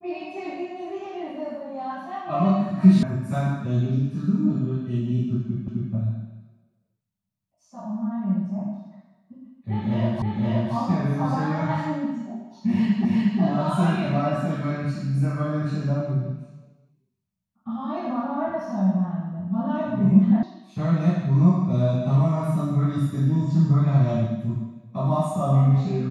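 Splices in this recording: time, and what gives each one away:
3.03 s: sound stops dead
5.68 s: repeat of the last 0.26 s
10.22 s: repeat of the last 0.52 s
13.05 s: repeat of the last 0.36 s
20.43 s: sound stops dead

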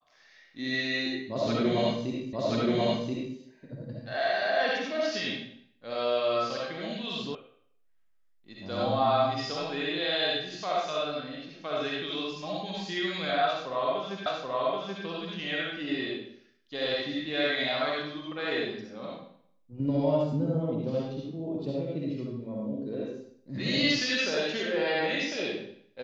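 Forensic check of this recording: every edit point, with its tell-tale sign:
2.33 s: repeat of the last 1.03 s
7.35 s: sound stops dead
14.26 s: repeat of the last 0.78 s

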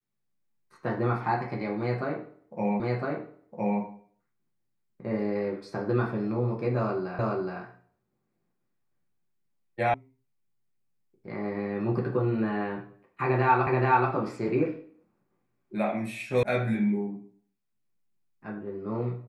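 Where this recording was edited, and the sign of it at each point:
2.80 s: repeat of the last 1.01 s
7.19 s: repeat of the last 0.42 s
9.94 s: sound stops dead
13.67 s: repeat of the last 0.43 s
16.43 s: sound stops dead

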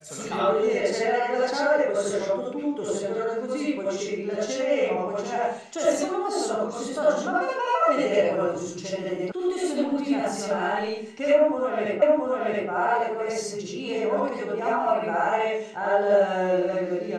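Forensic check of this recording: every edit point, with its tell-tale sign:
9.32 s: sound stops dead
12.02 s: repeat of the last 0.68 s

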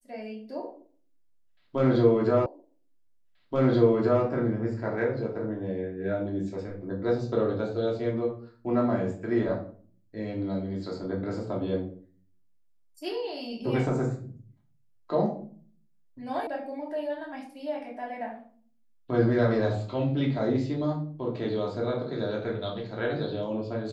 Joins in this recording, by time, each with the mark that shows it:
2.46 s: repeat of the last 1.78 s
16.47 s: sound stops dead

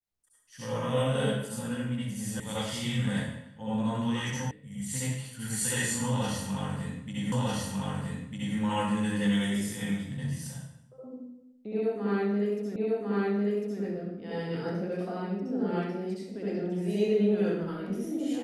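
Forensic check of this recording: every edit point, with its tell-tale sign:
2.40 s: sound stops dead
4.51 s: sound stops dead
7.32 s: repeat of the last 1.25 s
12.76 s: repeat of the last 1.05 s

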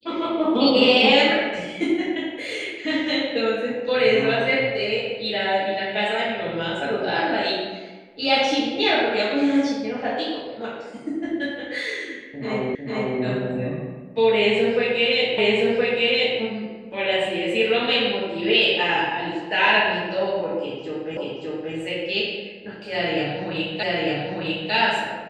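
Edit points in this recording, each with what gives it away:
12.75 s: repeat of the last 0.45 s
15.38 s: repeat of the last 1.02 s
21.17 s: repeat of the last 0.58 s
23.83 s: repeat of the last 0.9 s

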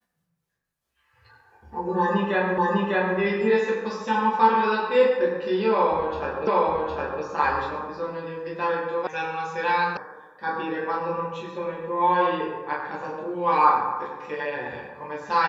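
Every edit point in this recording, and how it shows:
2.58 s: repeat of the last 0.6 s
6.47 s: repeat of the last 0.76 s
9.07 s: sound stops dead
9.97 s: sound stops dead

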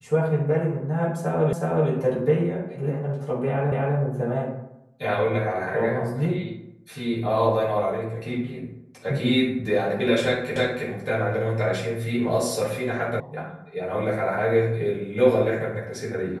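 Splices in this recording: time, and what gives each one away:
1.53 s: repeat of the last 0.37 s
3.72 s: repeat of the last 0.25 s
10.56 s: repeat of the last 0.32 s
13.20 s: sound stops dead

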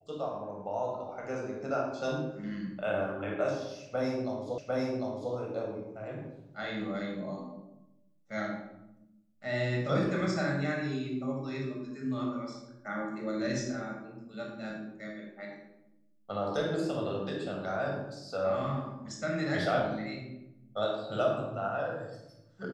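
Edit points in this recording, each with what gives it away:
4.58 s: repeat of the last 0.75 s

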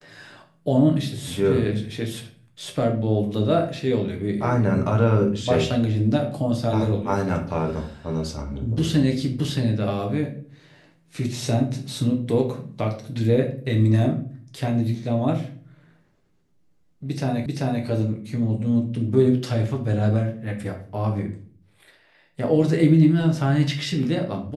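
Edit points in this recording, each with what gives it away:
17.46 s: repeat of the last 0.39 s

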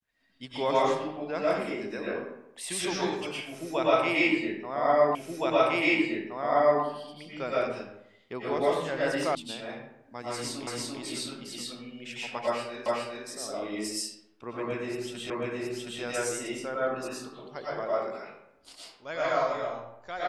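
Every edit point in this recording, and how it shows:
5.15 s: repeat of the last 1.67 s
9.35 s: sound stops dead
10.67 s: repeat of the last 0.34 s
12.86 s: repeat of the last 0.41 s
15.30 s: repeat of the last 0.72 s

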